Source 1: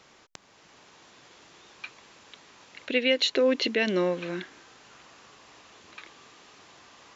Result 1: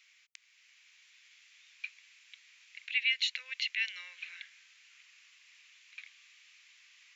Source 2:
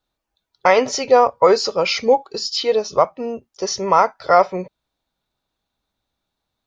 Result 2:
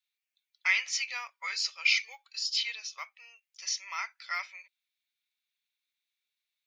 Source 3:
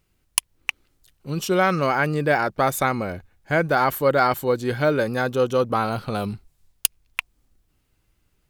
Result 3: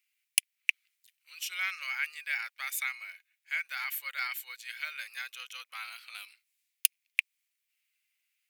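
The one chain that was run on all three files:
ladder high-pass 2000 Hz, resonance 60%; high shelf 8200 Hz +8 dB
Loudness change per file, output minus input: -8.0, -13.5, -11.0 LU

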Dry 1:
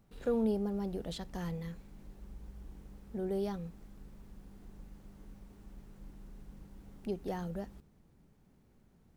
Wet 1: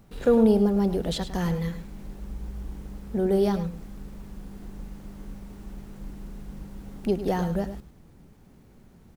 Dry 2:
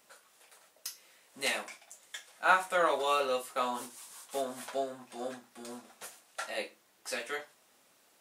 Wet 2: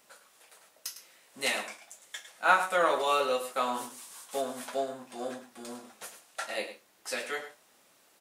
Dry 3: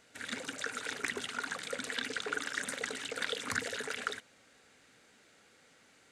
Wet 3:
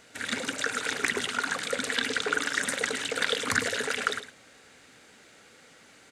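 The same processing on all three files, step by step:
echo 0.105 s -11.5 dB; normalise peaks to -9 dBFS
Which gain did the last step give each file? +12.0, +2.0, +8.0 dB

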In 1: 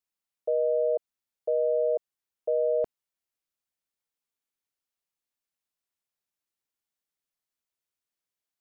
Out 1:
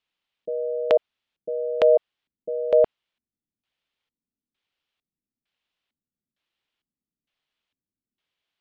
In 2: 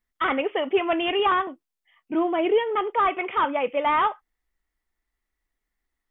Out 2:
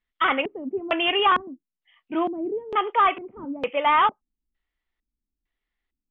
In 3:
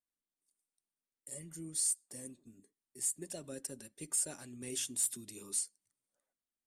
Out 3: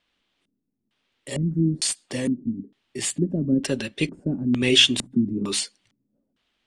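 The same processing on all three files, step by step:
dynamic EQ 1100 Hz, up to +5 dB, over -36 dBFS, Q 0.81; LFO low-pass square 1.1 Hz 240–3200 Hz; match loudness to -23 LUFS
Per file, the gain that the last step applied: +8.0, -3.0, +23.5 dB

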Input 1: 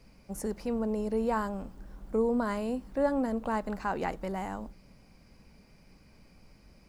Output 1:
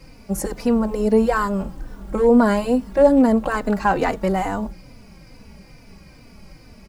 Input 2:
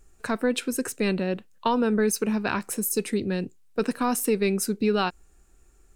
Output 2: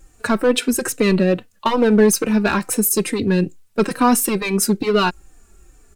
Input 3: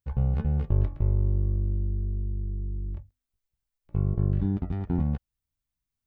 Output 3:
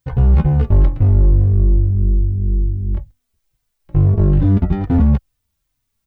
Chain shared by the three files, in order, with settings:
in parallel at -8 dB: wavefolder -21.5 dBFS; on the sum: endless flanger 3.3 ms -2.3 Hz; normalise peaks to -3 dBFS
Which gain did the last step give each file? +13.0, +9.5, +14.0 dB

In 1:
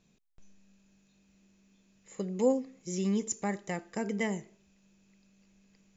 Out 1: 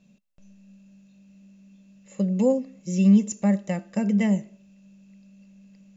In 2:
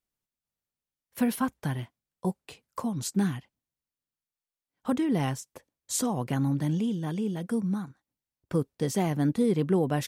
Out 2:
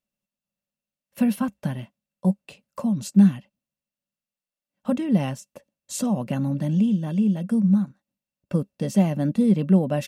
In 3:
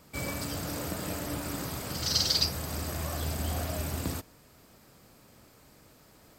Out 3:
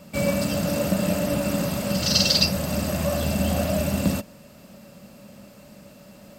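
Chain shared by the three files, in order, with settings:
bell 3700 Hz +2.5 dB 3 oct; small resonant body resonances 200/570/2700 Hz, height 16 dB, ringing for 60 ms; match loudness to -23 LUFS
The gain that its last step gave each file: -1.5, -3.5, +4.0 dB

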